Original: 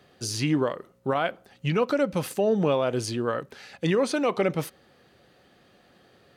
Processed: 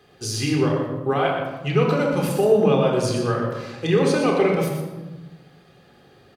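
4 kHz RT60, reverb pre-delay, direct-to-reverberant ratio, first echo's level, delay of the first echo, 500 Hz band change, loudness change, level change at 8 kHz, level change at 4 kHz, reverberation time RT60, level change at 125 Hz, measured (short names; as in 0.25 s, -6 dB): 0.70 s, 3 ms, -0.5 dB, -7.5 dB, 0.12 s, +6.0 dB, +5.5 dB, +3.5 dB, +4.0 dB, 1.1 s, +7.5 dB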